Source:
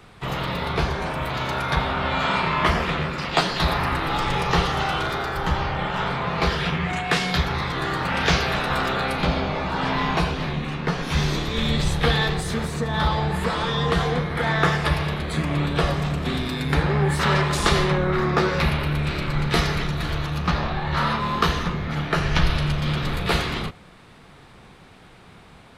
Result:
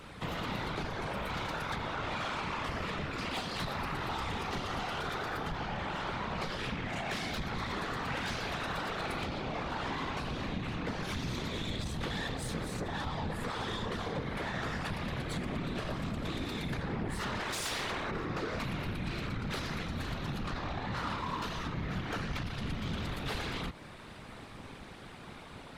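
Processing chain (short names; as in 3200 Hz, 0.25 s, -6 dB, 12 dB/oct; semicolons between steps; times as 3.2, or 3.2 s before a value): 17.39–18.1 spectral limiter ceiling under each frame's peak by 19 dB; compressor 4:1, threshold -31 dBFS, peak gain reduction 15 dB; soft clip -31.5 dBFS, distortion -12 dB; whisperiser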